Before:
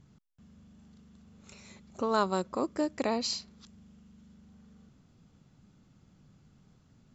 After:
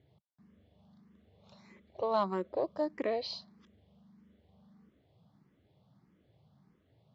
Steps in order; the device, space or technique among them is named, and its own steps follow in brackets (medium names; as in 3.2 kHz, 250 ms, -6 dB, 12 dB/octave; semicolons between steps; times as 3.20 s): barber-pole phaser into a guitar amplifier (barber-pole phaser +1.6 Hz; saturation -21.5 dBFS, distortion -18 dB; cabinet simulation 110–3800 Hz, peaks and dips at 160 Hz -4 dB, 240 Hz -8 dB, 630 Hz +5 dB, 1.4 kHz -9 dB, 2.6 kHz -8 dB); trim +1.5 dB